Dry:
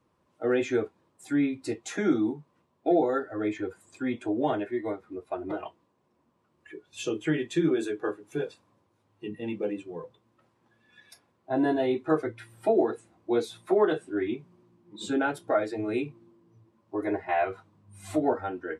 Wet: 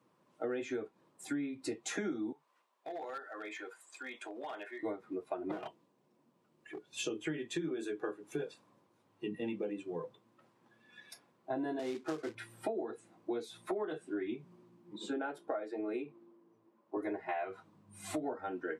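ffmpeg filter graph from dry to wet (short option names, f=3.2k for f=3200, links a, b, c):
-filter_complex "[0:a]asettb=1/sr,asplit=3[a][b][c];[a]atrim=end=2.324[d];[b]atrim=start=2.32:end=4.83,asetpts=PTS-STARTPTS,afade=t=in:d=0.004:c=qsin,afade=t=out:st=2.506:d=0.004:c=qsin,highpass=840,acompressor=threshold=-41dB:ratio=3:attack=3.2:release=140:knee=1:detection=peak,asoftclip=type=hard:threshold=-37dB[e];[c]atrim=start=4.826[f];[d][e]acrossfade=d=0.004:c1=hsin:c2=qsin[g];[g][f]acrossfade=d=0.004:c1=qsin:c2=hsin,asettb=1/sr,asplit=3[h][i][j];[h]atrim=end=5.524[k];[i]atrim=start=5.52:end=6.91,asetpts=PTS-STARTPTS,afade=t=in:d=0.004:c=qsin,afade=t=out:st=1.386:d=0.004:c=qsin,equalizer=f=1.3k:w=0.75:g=-4,bandreject=f=1.1k:w=26,aeval=exprs='clip(val(0),-1,0.0075)':c=same[l];[j]atrim=start=6.906[m];[k][l]acrossfade=d=0.004:c1=hsin:c2=qsin[n];[n][m]acrossfade=d=0.004:c1=qsin:c2=hsin,asettb=1/sr,asplit=3[o][p][q];[o]atrim=end=11.794[r];[p]atrim=start=11.79:end=12.35,asetpts=PTS-STARTPTS,afade=t=in:d=0.004:c=qsin,afade=t=out:st=0.556:d=0.004:c=qsin,acrossover=split=350|1100[s][t][u];[s]acompressor=threshold=-29dB:ratio=4[v];[t]acompressor=threshold=-33dB:ratio=4[w];[u]acompressor=threshold=-42dB:ratio=4[x];[v][w][x]amix=inputs=3:normalize=0,acrusher=bits=3:mode=log:mix=0:aa=0.000001,highpass=160,lowpass=6.9k[y];[q]atrim=start=12.346[z];[r][y]acrossfade=d=0.004:c1=hsin:c2=qsin[aa];[aa][z]acrossfade=d=0.004:c1=qsin:c2=hsin,asettb=1/sr,asplit=3[ab][ac][ad];[ab]atrim=end=14.984[ae];[ac]atrim=start=14.98:end=16.97,asetpts=PTS-STARTPTS,afade=t=in:d=0.004:c=qsin,afade=t=out:st=1.986:d=0.004:c=qsin,highpass=310,highshelf=f=2.5k:g=-11.5[af];[ad]atrim=start=16.966[ag];[ae][af]acrossfade=d=0.004:c1=hsin:c2=qsin[ah];[ah][ag]acrossfade=d=0.004:c1=qsin:c2=hsin,highpass=f=130:w=0.5412,highpass=f=130:w=1.3066,acompressor=threshold=-34dB:ratio=10"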